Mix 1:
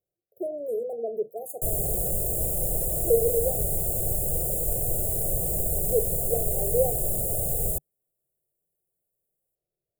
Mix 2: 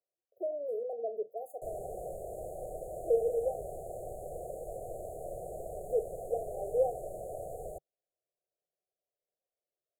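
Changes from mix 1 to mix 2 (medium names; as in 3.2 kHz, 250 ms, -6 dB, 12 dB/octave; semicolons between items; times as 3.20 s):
background: add distance through air 51 m; master: add three-band isolator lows -20 dB, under 500 Hz, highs -20 dB, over 3 kHz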